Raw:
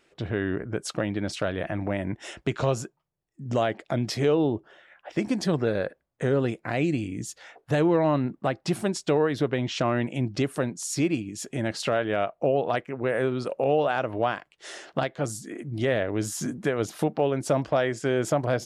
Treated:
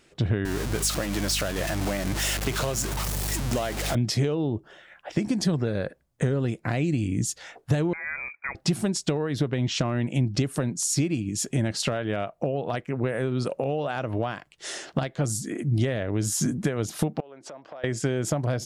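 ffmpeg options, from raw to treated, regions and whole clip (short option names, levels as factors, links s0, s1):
-filter_complex "[0:a]asettb=1/sr,asplit=3[s0][s1][s2];[s0]atrim=end=0.454[s3];[s1]atrim=start=0.45:end=3.95,asetpts=PTS-STARTPTS,afade=t=in:d=0.004:c=qsin,afade=t=out:st=3.496:d=0.004:c=qsin,aeval=exprs='val(0)+0.5*0.0473*sgn(val(0))':c=same,highpass=f=550:p=1,aeval=exprs='val(0)+0.01*(sin(2*PI*50*n/s)+sin(2*PI*2*50*n/s)/2+sin(2*PI*3*50*n/s)/3+sin(2*PI*4*50*n/s)/4+sin(2*PI*5*50*n/s)/5)':c=same[s4];[s2]atrim=start=3.946[s5];[s3][s4]acrossfade=d=0.004:c1=hsin:c2=qsin[s6];[s6][s5]acrossfade=d=0.004:c1=qsin:c2=hsin,asettb=1/sr,asplit=3[s7][s8][s9];[s7]atrim=end=7.934[s10];[s8]atrim=start=7.93:end=8.55,asetpts=PTS-STARTPTS,afade=t=in:d=0.004:c=qsin,afade=t=out:st=0.616:d=0.004:c=qsin,tiltshelf=f=800:g=-9.5,acompressor=threshold=0.0158:ratio=2:attack=3.2:release=140:knee=1:detection=peak,lowpass=f=2200:t=q:w=0.5098,lowpass=f=2200:t=q:w=0.6013,lowpass=f=2200:t=q:w=0.9,lowpass=f=2200:t=q:w=2.563,afreqshift=-2600[s11];[s9]atrim=start=8.546[s12];[s10][s11]acrossfade=d=0.004:c1=hsin:c2=qsin[s13];[s13][s12]acrossfade=d=0.004:c1=qsin:c2=hsin,asettb=1/sr,asplit=3[s14][s15][s16];[s14]atrim=end=17.204[s17];[s15]atrim=start=17.2:end=17.84,asetpts=PTS-STARTPTS,afade=t=in:d=0.004:c=qsin,afade=t=out:st=0.636:d=0.004:c=qsin,highshelf=f=2600:g=-12,acompressor=threshold=0.0141:ratio=10:attack=3.2:release=140:knee=1:detection=peak,highpass=540,lowpass=5800[s18];[s16]atrim=start=17.836[s19];[s17][s18]acrossfade=d=0.004:c1=hsin:c2=qsin[s20];[s20][s19]acrossfade=d=0.004:c1=qsin:c2=hsin,equalizer=f=7600:w=0.49:g=3.5,acompressor=threshold=0.0398:ratio=6,bass=f=250:g=9,treble=f=4000:g=3,volume=1.33"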